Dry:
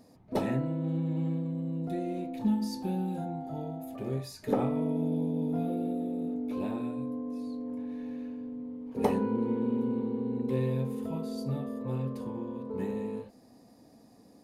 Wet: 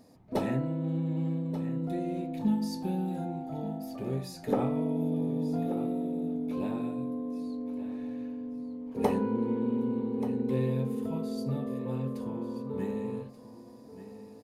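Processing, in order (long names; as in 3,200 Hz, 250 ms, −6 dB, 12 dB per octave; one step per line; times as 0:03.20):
single-tap delay 1,183 ms −13 dB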